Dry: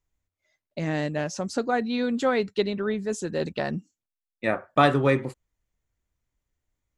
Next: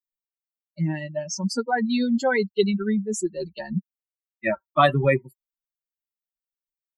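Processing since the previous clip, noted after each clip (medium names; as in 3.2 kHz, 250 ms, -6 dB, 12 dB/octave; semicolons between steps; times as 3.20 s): expander on every frequency bin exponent 3; comb 5.2 ms, depth 60%; in parallel at -3 dB: compressor with a negative ratio -31 dBFS, ratio -1; on the sum: trim +3.5 dB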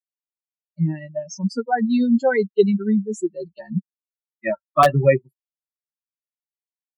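integer overflow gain 6.5 dB; spectral contrast expander 1.5:1; trim +3 dB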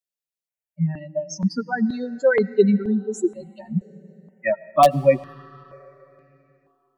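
algorithmic reverb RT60 3.5 s, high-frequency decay 0.8×, pre-delay 60 ms, DRR 19.5 dB; stepped phaser 2.1 Hz 290–3200 Hz; trim +2.5 dB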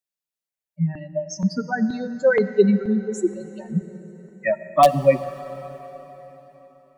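plate-style reverb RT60 4.5 s, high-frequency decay 0.8×, DRR 14 dB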